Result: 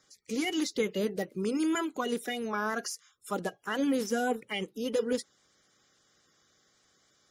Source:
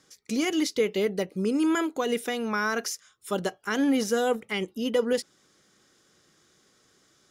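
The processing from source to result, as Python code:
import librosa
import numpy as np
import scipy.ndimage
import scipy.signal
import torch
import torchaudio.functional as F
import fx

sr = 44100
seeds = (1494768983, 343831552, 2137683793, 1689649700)

y = fx.spec_quant(x, sr, step_db=30)
y = y * 10.0 ** (-4.0 / 20.0)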